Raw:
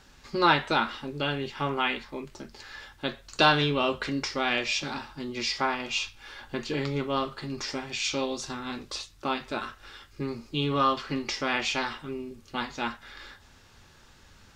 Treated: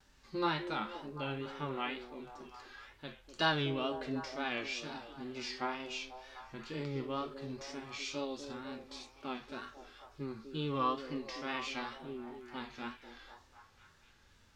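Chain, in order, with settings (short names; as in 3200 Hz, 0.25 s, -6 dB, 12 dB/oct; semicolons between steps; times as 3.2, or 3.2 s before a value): harmonic-percussive split percussive -9 dB; vibrato 2.1 Hz 94 cents; delay with a stepping band-pass 0.247 s, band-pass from 380 Hz, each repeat 0.7 oct, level -6.5 dB; gain -8 dB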